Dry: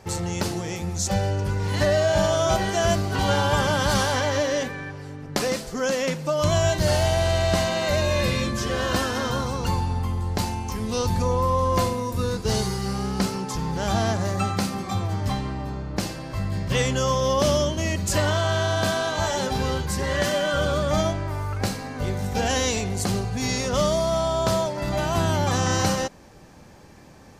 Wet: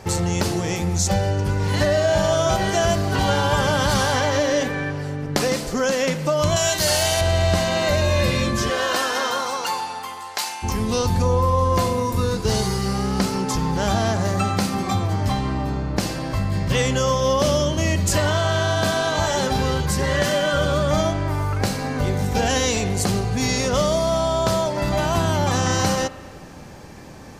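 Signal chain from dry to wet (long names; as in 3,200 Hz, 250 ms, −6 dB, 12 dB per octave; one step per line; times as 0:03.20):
0:06.56–0:07.21: spectral tilt +3 dB per octave
0:08.69–0:10.62: high-pass filter 390 Hz → 1,300 Hz 12 dB per octave
downward compressor 2 to 1, threshold −28 dBFS, peak gain reduction 7 dB
spring reverb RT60 2 s, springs 34 ms, chirp 65 ms, DRR 14 dB
level +7.5 dB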